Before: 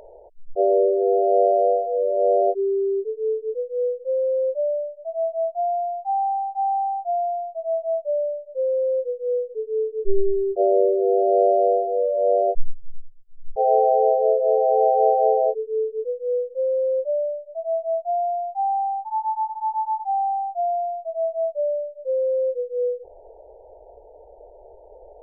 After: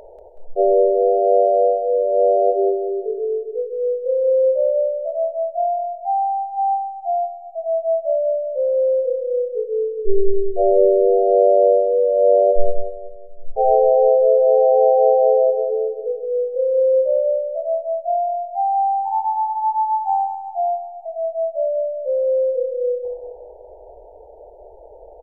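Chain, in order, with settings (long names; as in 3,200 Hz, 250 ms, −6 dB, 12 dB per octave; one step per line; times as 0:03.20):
0:21.02–0:22.71: dynamic equaliser 710 Hz, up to −6 dB, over −39 dBFS, Q 5.7
on a send: repeating echo 187 ms, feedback 46%, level −6 dB
on the sum: level +3 dB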